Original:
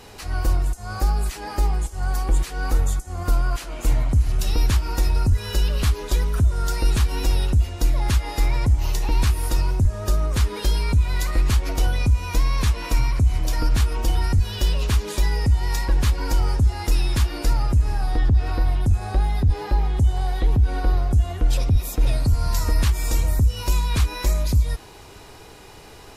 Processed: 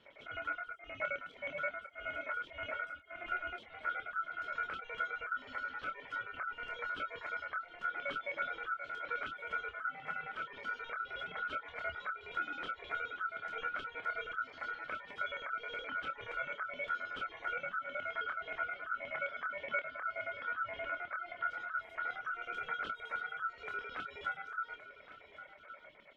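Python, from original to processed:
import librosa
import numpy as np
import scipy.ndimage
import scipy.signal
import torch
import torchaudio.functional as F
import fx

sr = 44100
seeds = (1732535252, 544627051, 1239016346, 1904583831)

y = fx.low_shelf(x, sr, hz=62.0, db=10.5)
y = fx.filter_lfo_bandpass(y, sr, shape='square', hz=9.5, low_hz=810.0, high_hz=1800.0, q=5.9)
y = fx.tilt_eq(y, sr, slope=-4.0)
y = y * np.sin(2.0 * np.pi * 1400.0 * np.arange(len(y)) / sr)
y = fx.doubler(y, sr, ms=27.0, db=-5.5)
y = fx.dereverb_blind(y, sr, rt60_s=0.72)
y = y + 10.0 ** (-13.5 / 20.0) * np.pad(y, (int(1119 * sr / 1000.0), 0))[:len(y)]
y = y * librosa.db_to_amplitude(-1.5)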